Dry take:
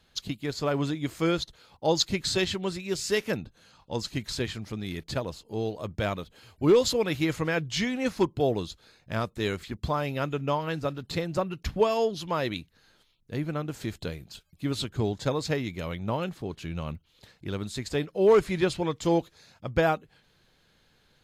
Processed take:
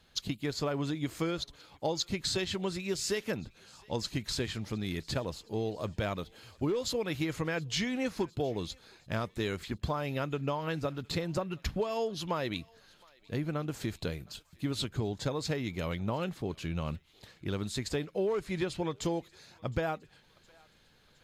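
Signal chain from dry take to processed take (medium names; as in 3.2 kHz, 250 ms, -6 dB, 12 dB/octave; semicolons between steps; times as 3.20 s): compression 12:1, threshold -28 dBFS, peak gain reduction 13.5 dB; on a send: thinning echo 714 ms, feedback 61%, high-pass 1 kHz, level -24 dB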